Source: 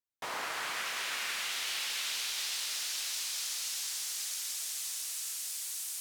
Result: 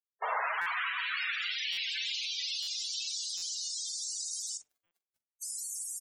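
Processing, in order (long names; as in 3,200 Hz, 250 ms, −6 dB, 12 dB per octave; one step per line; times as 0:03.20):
in parallel at +1 dB: speech leveller within 4 dB 0.5 s
0:04.57–0:05.42: on the sum: formant filter i
bit reduction 7 bits
spectral peaks only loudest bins 32
double-tracking delay 43 ms −12.5 dB
on a send: feedback echo with a band-pass in the loop 61 ms, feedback 50%, band-pass 480 Hz, level −12 dB
on the sum: buffer that repeats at 0:00.61/0:01.72/0:02.62/0:03.37/0:04.86, samples 256, times 8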